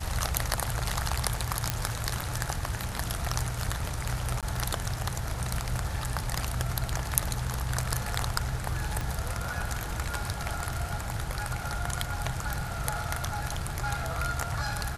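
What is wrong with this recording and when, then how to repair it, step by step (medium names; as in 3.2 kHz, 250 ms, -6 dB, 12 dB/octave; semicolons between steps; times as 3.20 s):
1.70 s: pop -8 dBFS
4.41–4.43 s: dropout 17 ms
9.01 s: pop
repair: de-click; interpolate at 4.41 s, 17 ms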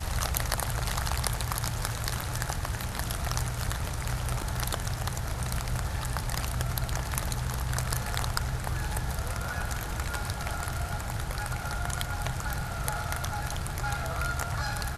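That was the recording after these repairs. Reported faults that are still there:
9.01 s: pop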